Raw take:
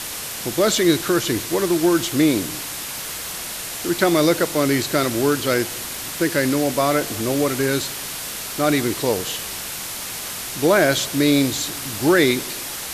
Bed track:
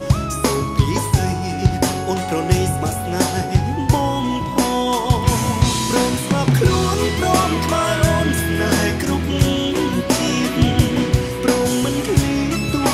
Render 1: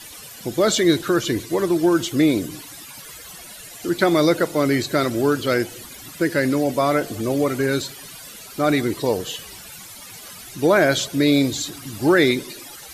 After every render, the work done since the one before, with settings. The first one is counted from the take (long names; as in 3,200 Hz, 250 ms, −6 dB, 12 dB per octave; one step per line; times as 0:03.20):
broadband denoise 15 dB, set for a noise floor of −30 dBFS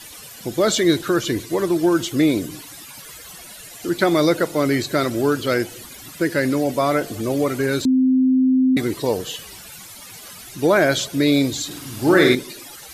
0:07.85–0:08.77: beep over 259 Hz −12.5 dBFS
0:11.66–0:12.35: flutter between parallel walls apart 8.2 metres, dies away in 0.58 s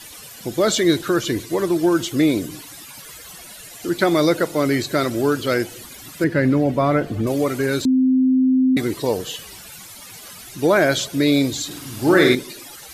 0:06.24–0:07.27: bass and treble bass +8 dB, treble −14 dB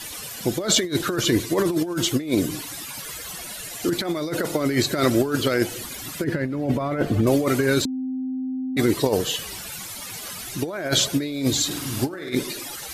compressor whose output falls as the input rises −21 dBFS, ratio −0.5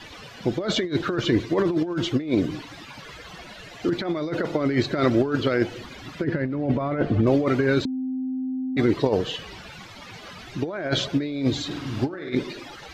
high-frequency loss of the air 220 metres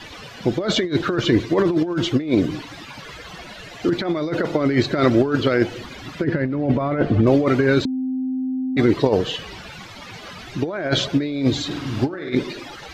level +4 dB